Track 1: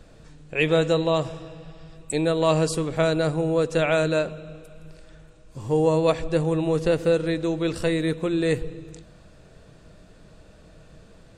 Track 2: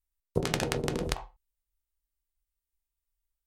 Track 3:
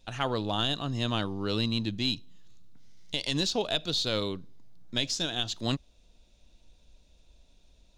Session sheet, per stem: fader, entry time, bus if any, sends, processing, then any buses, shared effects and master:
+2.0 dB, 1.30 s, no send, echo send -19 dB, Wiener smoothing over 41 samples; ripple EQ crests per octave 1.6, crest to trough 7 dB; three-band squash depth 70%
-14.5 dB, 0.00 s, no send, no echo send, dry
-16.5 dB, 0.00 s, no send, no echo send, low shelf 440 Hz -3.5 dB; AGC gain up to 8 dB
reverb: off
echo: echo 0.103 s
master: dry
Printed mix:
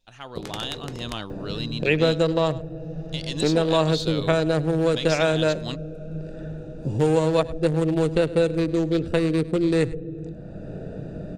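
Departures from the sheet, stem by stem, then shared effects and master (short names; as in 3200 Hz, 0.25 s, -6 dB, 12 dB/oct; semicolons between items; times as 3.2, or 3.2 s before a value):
stem 1: missing ripple EQ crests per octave 1.6, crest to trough 7 dB; stem 2 -14.5 dB -> -6.0 dB; stem 3 -16.5 dB -> -9.5 dB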